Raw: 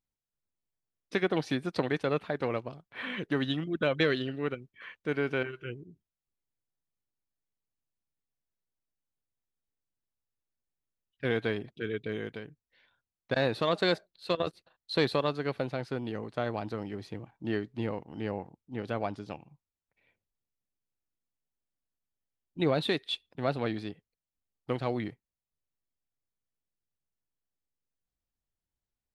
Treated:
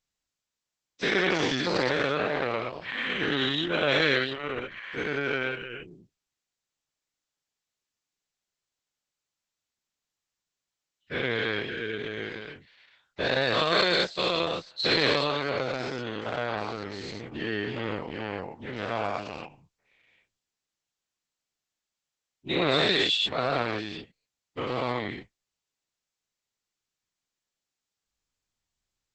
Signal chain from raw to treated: every event in the spectrogram widened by 240 ms; tilt shelf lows -4.5 dB, about 1.3 kHz; Opus 10 kbps 48 kHz

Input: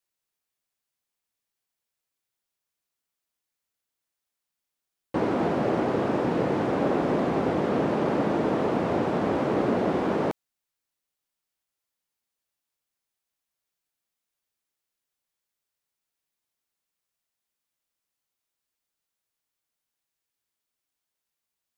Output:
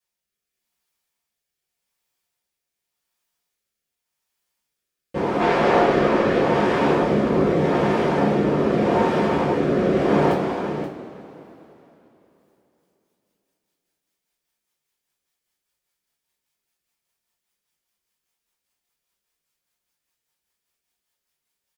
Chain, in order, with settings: 5.40–6.39 s: overdrive pedal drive 15 dB, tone 4.1 kHz, clips at -13.5 dBFS; on a send: delay 527 ms -4 dB; on the sum: rotary cabinet horn 0.85 Hz, later 5 Hz, at 12.21 s; two-slope reverb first 0.25 s, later 3.4 s, from -21 dB, DRR -7 dB

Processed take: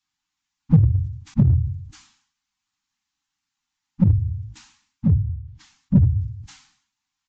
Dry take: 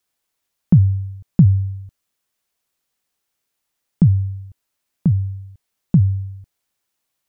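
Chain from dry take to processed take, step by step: phase randomisation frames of 50 ms; resampled via 16 kHz; Chebyshev band-stop 310–770 Hz, order 5; in parallel at -3.5 dB: hard clipper -13 dBFS, distortion -9 dB; 5.10–5.96 s: on the sum: low-pass that closes with the level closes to 670 Hz, closed at -17 dBFS; decay stretcher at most 93 dB/s; trim -5 dB

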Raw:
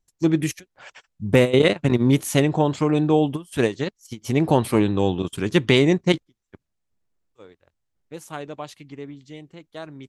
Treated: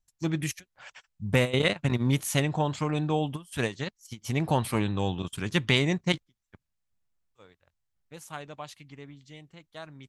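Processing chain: peaking EQ 360 Hz -9.5 dB 1.4 oct; trim -3 dB

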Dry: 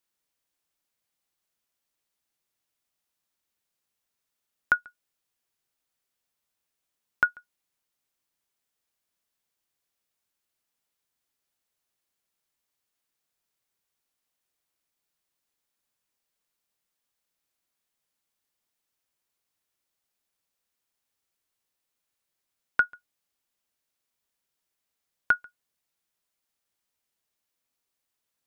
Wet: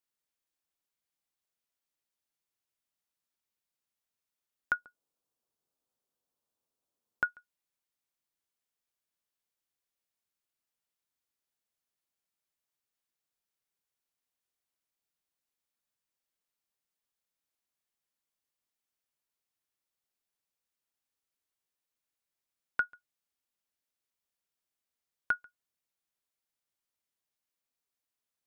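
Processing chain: 4.73–7.23 s: graphic EQ 125/250/500/1000/2000 Hz +3/+6/+8/+4/-7 dB; trim -7.5 dB

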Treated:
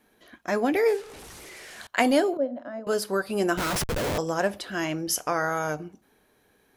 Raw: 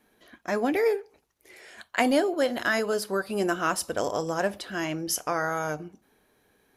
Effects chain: 0.88–1.87 s: one-bit delta coder 64 kbps, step -39.5 dBFS; 2.37–2.87 s: two resonant band-passes 390 Hz, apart 1.1 oct; 3.57–4.18 s: Schmitt trigger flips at -36 dBFS; trim +1.5 dB

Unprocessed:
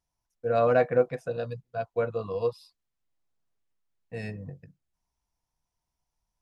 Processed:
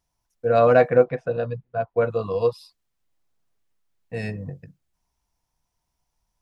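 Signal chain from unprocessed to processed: 1.04–2.00 s: low-pass 3.1 kHz -> 1.8 kHz 12 dB/octave; trim +6.5 dB

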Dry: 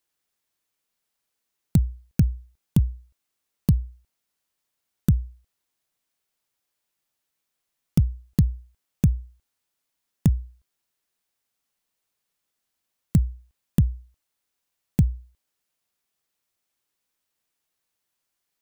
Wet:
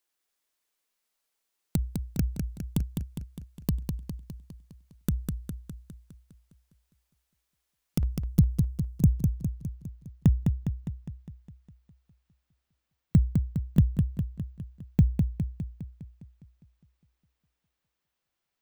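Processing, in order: peaking EQ 110 Hz -10.5 dB 1.8 oct, from 8.03 s 2.2 kHz, from 9.13 s 11 kHz; modulated delay 204 ms, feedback 58%, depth 75 cents, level -5 dB; trim -1.5 dB

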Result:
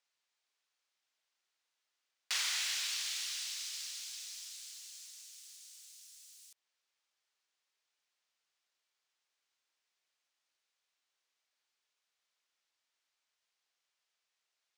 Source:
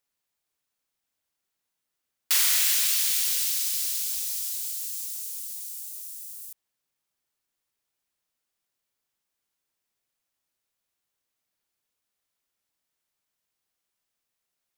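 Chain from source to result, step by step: three-band isolator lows -22 dB, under 300 Hz, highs -23 dB, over 7 kHz; tape noise reduction on one side only encoder only; trim -6.5 dB

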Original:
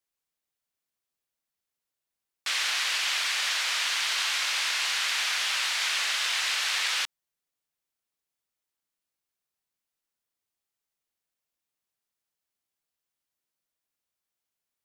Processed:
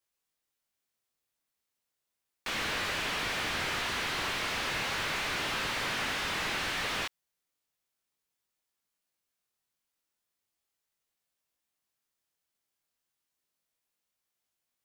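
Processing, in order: chorus 0.35 Hz, delay 19 ms, depth 5.3 ms; slew-rate limiter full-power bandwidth 36 Hz; trim +5 dB

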